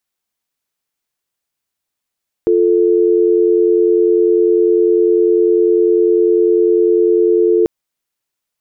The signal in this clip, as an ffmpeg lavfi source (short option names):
-f lavfi -i "aevalsrc='0.266*(sin(2*PI*350*t)+sin(2*PI*440*t))':d=5.19:s=44100"